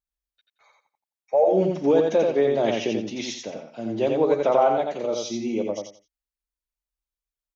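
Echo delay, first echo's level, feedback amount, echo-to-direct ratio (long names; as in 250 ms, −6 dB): 87 ms, −3.5 dB, 24%, −3.0 dB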